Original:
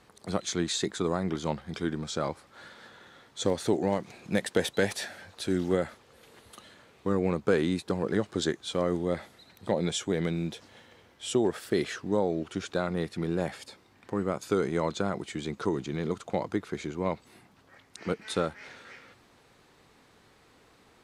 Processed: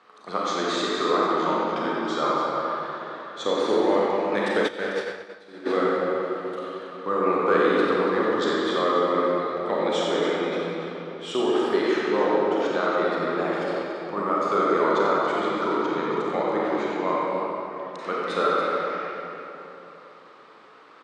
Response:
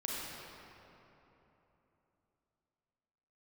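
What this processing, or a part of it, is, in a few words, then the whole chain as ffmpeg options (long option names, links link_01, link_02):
station announcement: -filter_complex "[0:a]highpass=350,lowpass=4100,equalizer=frequency=1200:width_type=o:width=0.44:gain=10,aecho=1:1:90.38|282.8:0.398|0.282[link_01];[1:a]atrim=start_sample=2205[link_02];[link_01][link_02]afir=irnorm=-1:irlink=0,asplit=3[link_03][link_04][link_05];[link_03]afade=type=out:start_time=4.67:duration=0.02[link_06];[link_04]agate=range=-33dB:threshold=-18dB:ratio=3:detection=peak,afade=type=in:start_time=4.67:duration=0.02,afade=type=out:start_time=5.65:duration=0.02[link_07];[link_05]afade=type=in:start_time=5.65:duration=0.02[link_08];[link_06][link_07][link_08]amix=inputs=3:normalize=0,volume=4dB"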